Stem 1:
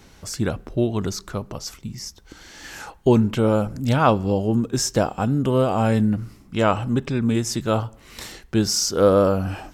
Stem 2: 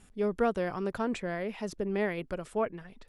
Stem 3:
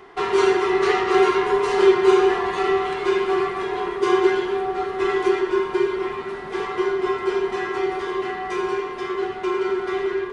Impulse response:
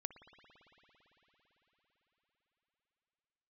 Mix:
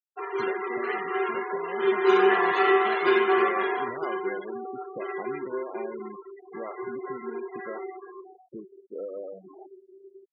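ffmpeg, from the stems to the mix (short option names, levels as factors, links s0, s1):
-filter_complex "[0:a]firequalizer=gain_entry='entry(130,0);entry(340,7);entry(500,12);entry(890,9);entry(6600,-11)':delay=0.05:min_phase=1,volume=0.106,asplit=2[s0][s1];[1:a]adelay=300,volume=0.794[s2];[2:a]bandreject=f=60:t=h:w=6,bandreject=f=120:t=h:w=6,bandreject=f=180:t=h:w=6,bandreject=f=240:t=h:w=6,bandreject=f=300:t=h:w=6,bandreject=f=360:t=h:w=6,bandreject=f=420:t=h:w=6,afade=t=in:st=1.79:d=0.59:silence=0.298538,afade=t=out:st=3.65:d=0.42:silence=0.266073,afade=t=out:st=7.81:d=0.64:silence=0.251189[s3];[s1]apad=whole_len=149098[s4];[s2][s4]sidechaincompress=threshold=0.00398:ratio=8:attack=16:release=603[s5];[s0][s5]amix=inputs=2:normalize=0,aemphasis=mode=reproduction:type=riaa,acompressor=threshold=0.0224:ratio=8,volume=1[s6];[s3][s6]amix=inputs=2:normalize=0,highpass=290,afftfilt=real='re*gte(hypot(re,im),0.0224)':imag='im*gte(hypot(re,im),0.0224)':win_size=1024:overlap=0.75,adynamicequalizer=threshold=0.00708:dfrequency=1700:dqfactor=1.8:tfrequency=1700:tqfactor=1.8:attack=5:release=100:ratio=0.375:range=2.5:mode=boostabove:tftype=bell"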